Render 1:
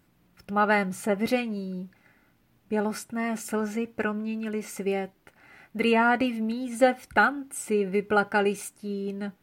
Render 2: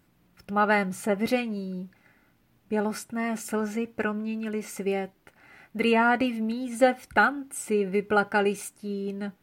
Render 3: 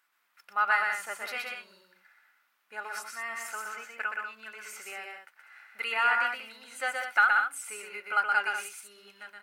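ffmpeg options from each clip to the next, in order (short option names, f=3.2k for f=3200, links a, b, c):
-af anull
-af "highpass=f=1.3k:t=q:w=1.8,aecho=1:1:122|191:0.668|0.422,volume=-5dB"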